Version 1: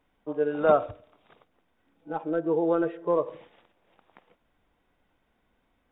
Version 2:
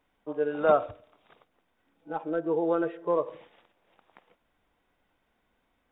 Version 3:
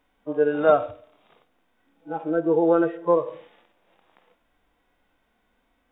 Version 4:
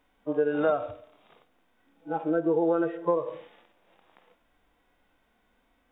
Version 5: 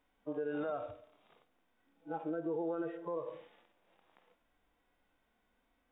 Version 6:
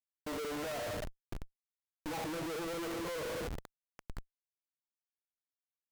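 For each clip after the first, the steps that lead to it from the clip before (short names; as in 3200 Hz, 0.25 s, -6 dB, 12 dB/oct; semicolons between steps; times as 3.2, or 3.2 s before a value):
low shelf 390 Hz -4.5 dB
harmonic-percussive split percussive -14 dB; gain +8 dB
compressor 6:1, threshold -21 dBFS, peak gain reduction 9.5 dB
limiter -21.5 dBFS, peak gain reduction 9 dB; gain -8 dB
Schmitt trigger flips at -57 dBFS; gain +4.5 dB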